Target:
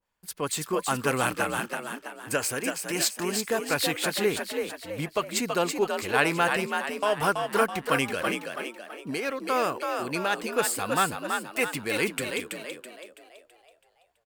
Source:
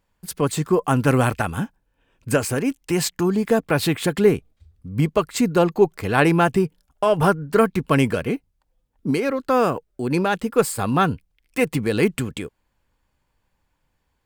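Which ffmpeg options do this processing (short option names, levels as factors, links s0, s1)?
-filter_complex "[0:a]lowshelf=f=310:g=-12,asplit=7[s0][s1][s2][s3][s4][s5][s6];[s1]adelay=329,afreqshift=55,volume=0.562[s7];[s2]adelay=658,afreqshift=110,volume=0.263[s8];[s3]adelay=987,afreqshift=165,volume=0.124[s9];[s4]adelay=1316,afreqshift=220,volume=0.0582[s10];[s5]adelay=1645,afreqshift=275,volume=0.0275[s11];[s6]adelay=1974,afreqshift=330,volume=0.0129[s12];[s0][s7][s8][s9][s10][s11][s12]amix=inputs=7:normalize=0,adynamicequalizer=threshold=0.02:dfrequency=1500:dqfactor=0.7:tfrequency=1500:tqfactor=0.7:attack=5:release=100:ratio=0.375:range=2.5:mode=boostabove:tftype=highshelf,volume=0.531"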